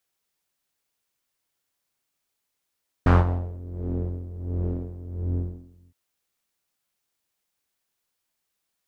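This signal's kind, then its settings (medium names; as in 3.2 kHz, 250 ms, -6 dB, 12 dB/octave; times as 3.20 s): synth patch with tremolo F2, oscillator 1 triangle, detune 23 cents, oscillator 2 level -5 dB, noise -8 dB, filter lowpass, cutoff 260 Hz, Q 1.8, filter envelope 2.5 oct, filter decay 0.58 s, filter sustain 25%, attack 1.1 ms, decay 0.18 s, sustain -18 dB, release 0.79 s, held 2.08 s, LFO 1.4 Hz, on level 15.5 dB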